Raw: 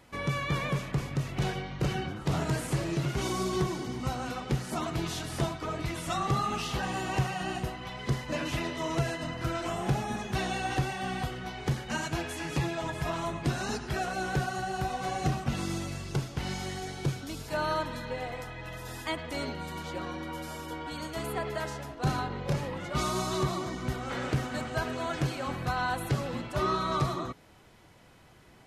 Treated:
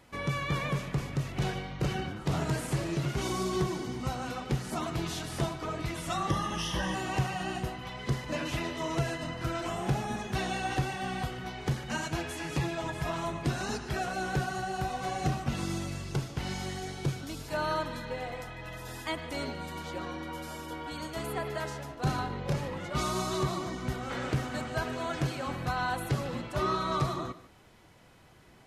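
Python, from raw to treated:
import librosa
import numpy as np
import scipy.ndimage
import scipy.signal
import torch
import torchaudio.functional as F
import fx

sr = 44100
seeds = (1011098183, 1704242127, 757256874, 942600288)

y = fx.ripple_eq(x, sr, per_octave=1.2, db=12, at=(6.29, 6.95))
y = y + 10.0 ** (-16.5 / 20.0) * np.pad(y, (int(149 * sr / 1000.0), 0))[:len(y)]
y = y * librosa.db_to_amplitude(-1.0)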